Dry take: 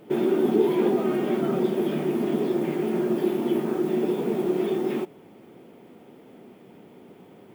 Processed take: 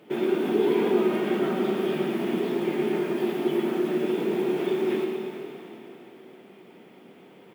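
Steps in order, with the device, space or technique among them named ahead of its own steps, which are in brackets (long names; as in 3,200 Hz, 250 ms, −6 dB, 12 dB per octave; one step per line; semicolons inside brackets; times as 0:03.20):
PA in a hall (high-pass filter 130 Hz; parametric band 2,500 Hz +7 dB 2.1 octaves; single-tap delay 114 ms −7 dB; convolution reverb RT60 3.5 s, pre-delay 111 ms, DRR 3.5 dB)
level −4.5 dB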